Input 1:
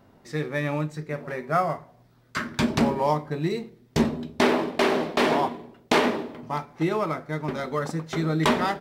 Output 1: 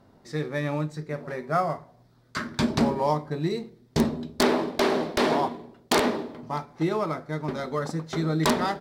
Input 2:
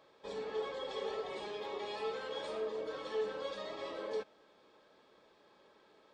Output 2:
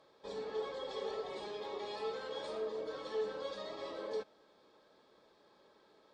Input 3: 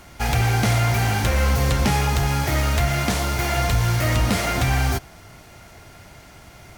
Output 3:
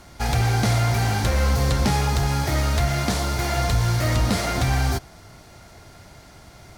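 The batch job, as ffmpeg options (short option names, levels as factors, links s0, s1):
-af "aeval=exprs='(mod(2.99*val(0)+1,2)-1)/2.99':c=same,aemphasis=mode=reproduction:type=75fm,aexciter=amount=2.9:drive=6.4:freq=3800,volume=0.841"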